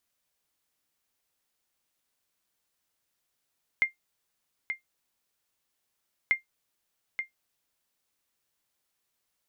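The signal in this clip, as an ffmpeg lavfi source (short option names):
-f lavfi -i "aevalsrc='0.188*(sin(2*PI*2110*mod(t,2.49))*exp(-6.91*mod(t,2.49)/0.13)+0.376*sin(2*PI*2110*max(mod(t,2.49)-0.88,0))*exp(-6.91*max(mod(t,2.49)-0.88,0)/0.13))':d=4.98:s=44100"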